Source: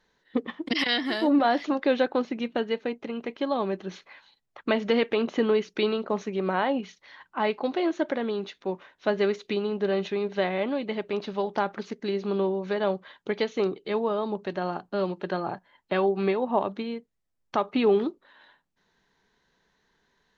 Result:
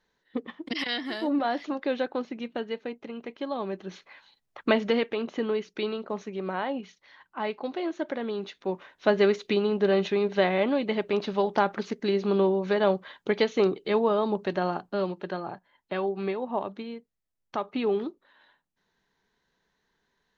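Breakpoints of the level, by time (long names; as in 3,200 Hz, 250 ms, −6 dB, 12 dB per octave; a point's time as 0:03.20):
0:03.55 −5 dB
0:04.70 +2.5 dB
0:05.15 −5 dB
0:07.95 −5 dB
0:09.07 +3 dB
0:14.56 +3 dB
0:15.49 −5 dB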